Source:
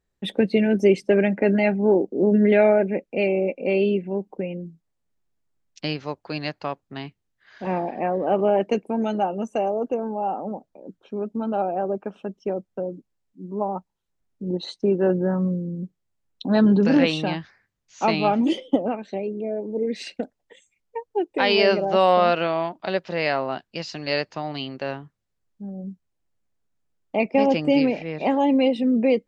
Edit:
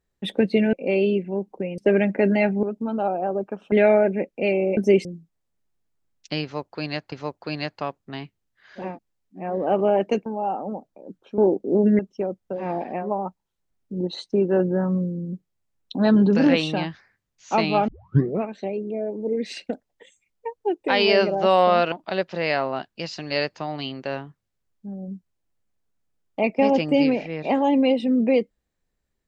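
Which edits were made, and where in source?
0.73–1.01 swap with 3.52–4.57
1.86–2.47 swap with 11.17–12.26
5.95–6.64 loop, 2 plays
7.7–8.07 swap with 12.9–13.5, crossfade 0.24 s
8.86–10.05 cut
18.38 tape start 0.58 s
22.42–22.68 cut

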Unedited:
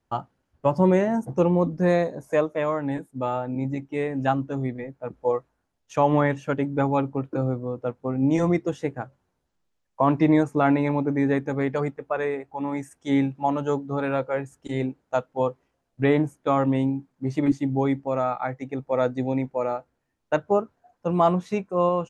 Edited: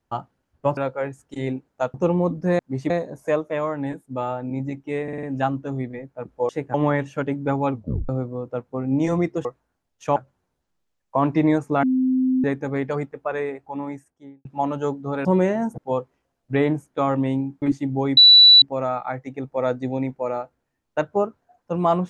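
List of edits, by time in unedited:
0.77–1.3 swap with 14.1–15.27
4.08 stutter 0.05 s, 5 plays
5.34–6.05 swap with 8.76–9.01
7.03 tape stop 0.37 s
10.68–11.29 bleep 258 Hz -16.5 dBFS
12.47–13.3 studio fade out
17.11–17.42 move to 1.95
17.97 add tone 3950 Hz -6.5 dBFS 0.45 s

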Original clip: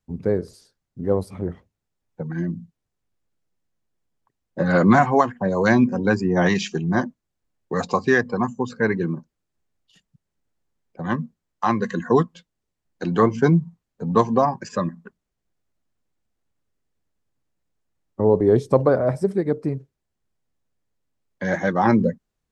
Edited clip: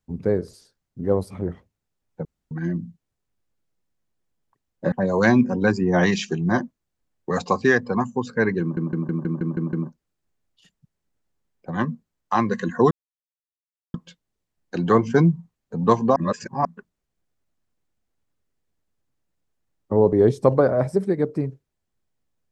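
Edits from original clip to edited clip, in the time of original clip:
2.25 insert room tone 0.26 s
4.66–5.35 cut
9.04 stutter 0.16 s, 8 plays
12.22 insert silence 1.03 s
14.44–14.93 reverse

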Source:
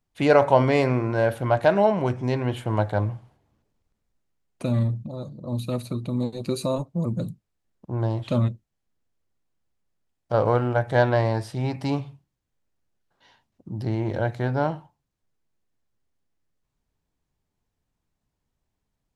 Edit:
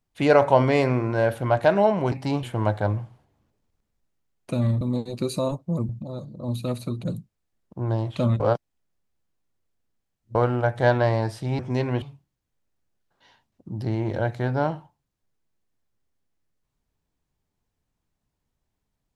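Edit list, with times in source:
2.12–2.55 swap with 11.71–12.02
6.08–7.16 move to 4.93
8.52–10.47 reverse

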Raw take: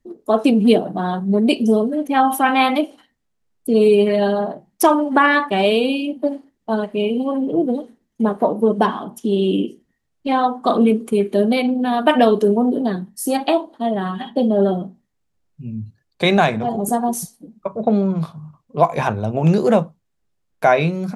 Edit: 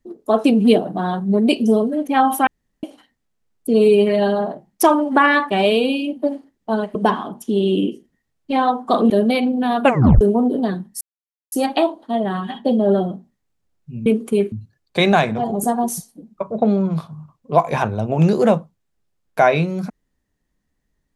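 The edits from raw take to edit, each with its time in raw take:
2.47–2.83 room tone
6.95–8.71 cut
10.86–11.32 move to 15.77
12.05 tape stop 0.38 s
13.23 insert silence 0.51 s

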